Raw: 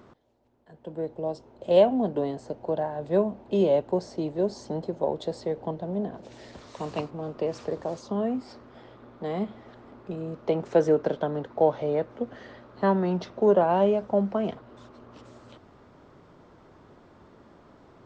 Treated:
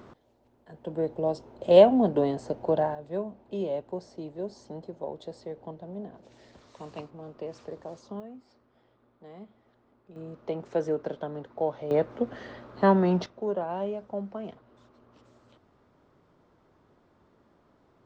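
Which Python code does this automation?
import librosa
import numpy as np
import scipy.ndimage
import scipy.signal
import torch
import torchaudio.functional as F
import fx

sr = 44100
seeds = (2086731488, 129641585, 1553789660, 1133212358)

y = fx.gain(x, sr, db=fx.steps((0.0, 3.0), (2.95, -9.0), (8.2, -17.0), (10.16, -7.0), (11.91, 2.5), (13.26, -10.0)))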